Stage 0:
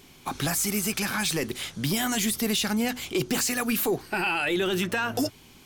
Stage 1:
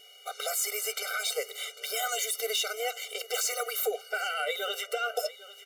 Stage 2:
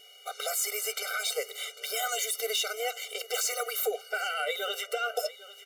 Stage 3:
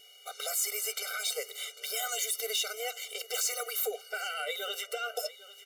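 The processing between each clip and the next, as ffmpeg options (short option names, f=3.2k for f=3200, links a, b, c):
-af "aeval=exprs='val(0)+0.00224*sin(2*PI*2900*n/s)':c=same,aecho=1:1:800:0.133,afftfilt=real='re*eq(mod(floor(b*sr/1024/390),2),1)':imag='im*eq(mod(floor(b*sr/1024/390),2),1)':win_size=1024:overlap=0.75"
-af anull
-af "equalizer=f=810:w=0.36:g=-5.5"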